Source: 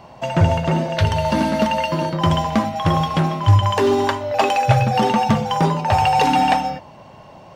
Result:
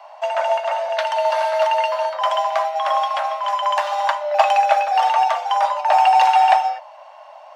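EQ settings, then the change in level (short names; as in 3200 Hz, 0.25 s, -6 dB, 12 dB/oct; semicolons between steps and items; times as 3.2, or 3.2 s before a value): steep high-pass 590 Hz 96 dB/oct; tilt -2.5 dB/oct; +2.5 dB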